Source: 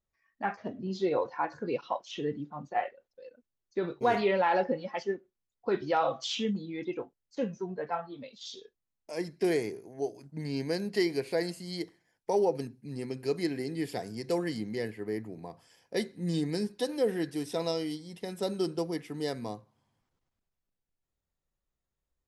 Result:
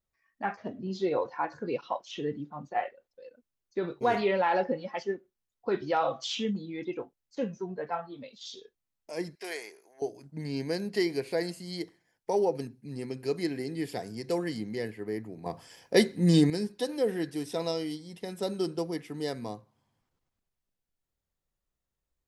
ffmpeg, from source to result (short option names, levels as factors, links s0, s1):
-filter_complex "[0:a]asettb=1/sr,asplit=3[s0][s1][s2];[s0]atrim=end=9.354[s3];[s1]atrim=start=9.35:end=10.02,asetpts=PTS-STARTPTS,afade=t=in:d=0.004:c=qsin,afade=t=out:st=0.666:d=0.004:c=qsin,highpass=890[s4];[s2]atrim=start=10.016[s5];[s3][s4]acrossfade=d=0.004:c1=hsin:c2=qsin[s6];[s6][s5]acrossfade=d=0.004:c1=qsin:c2=hsin,asplit=3[s7][s8][s9];[s7]atrim=end=15.462[s10];[s8]atrim=start=15.458:end=16.502,asetpts=PTS-STARTPTS,volume=2.99[s11];[s9]atrim=start=16.498[s12];[s10][s11]acrossfade=d=0.004:c1=hsin:c2=hsin[s13];[s13][s12]acrossfade=d=0.004:c1=hsin:c2=hsin"